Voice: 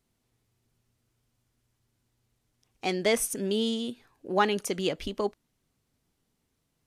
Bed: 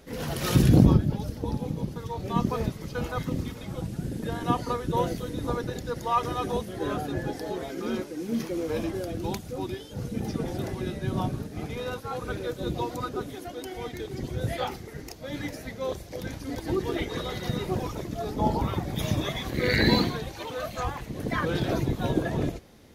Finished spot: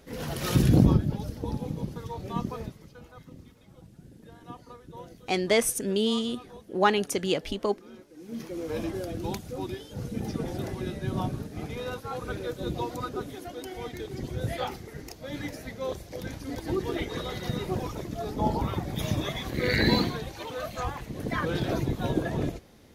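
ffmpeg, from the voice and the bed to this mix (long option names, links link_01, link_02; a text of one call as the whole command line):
ffmpeg -i stem1.wav -i stem2.wav -filter_complex "[0:a]adelay=2450,volume=2dB[link_01];[1:a]volume=14.5dB,afade=type=out:start_time=2.01:duration=0.98:silence=0.158489,afade=type=in:start_time=8.07:duration=0.8:silence=0.149624[link_02];[link_01][link_02]amix=inputs=2:normalize=0" out.wav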